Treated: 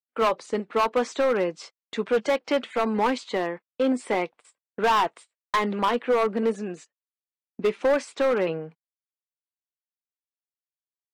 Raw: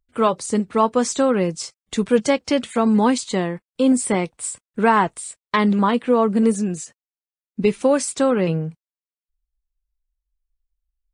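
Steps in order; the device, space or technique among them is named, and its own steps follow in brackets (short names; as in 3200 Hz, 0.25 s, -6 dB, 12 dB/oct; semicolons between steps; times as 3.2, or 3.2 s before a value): walkie-talkie (BPF 400–2900 Hz; hard clip -17 dBFS, distortion -10 dB; gate -43 dBFS, range -30 dB)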